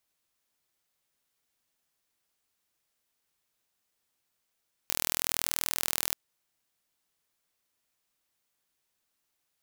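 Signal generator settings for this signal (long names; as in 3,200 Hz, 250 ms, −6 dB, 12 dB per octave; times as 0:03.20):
impulse train 40.7 per second, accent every 0, −1.5 dBFS 1.24 s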